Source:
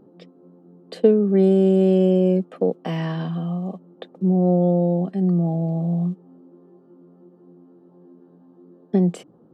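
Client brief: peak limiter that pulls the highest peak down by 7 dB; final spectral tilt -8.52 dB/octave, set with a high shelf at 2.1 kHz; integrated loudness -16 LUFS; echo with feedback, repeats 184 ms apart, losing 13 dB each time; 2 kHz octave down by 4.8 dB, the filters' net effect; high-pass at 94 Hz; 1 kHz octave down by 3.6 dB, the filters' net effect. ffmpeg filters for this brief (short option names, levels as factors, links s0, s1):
-af "highpass=94,equalizer=f=1000:t=o:g=-6,equalizer=f=2000:t=o:g=-7.5,highshelf=f=2100:g=6,alimiter=limit=0.251:level=0:latency=1,aecho=1:1:184|368|552:0.224|0.0493|0.0108,volume=2"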